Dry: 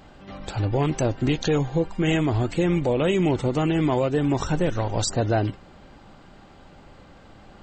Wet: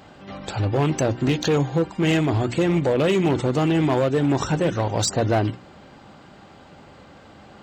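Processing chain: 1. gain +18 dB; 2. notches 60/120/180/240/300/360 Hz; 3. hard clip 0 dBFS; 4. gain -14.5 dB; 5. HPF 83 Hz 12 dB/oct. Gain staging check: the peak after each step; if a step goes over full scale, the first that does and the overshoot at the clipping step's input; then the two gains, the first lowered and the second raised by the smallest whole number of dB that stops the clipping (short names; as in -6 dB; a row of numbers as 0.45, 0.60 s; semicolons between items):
+7.0, +7.0, 0.0, -14.5, -10.0 dBFS; step 1, 7.0 dB; step 1 +11 dB, step 4 -7.5 dB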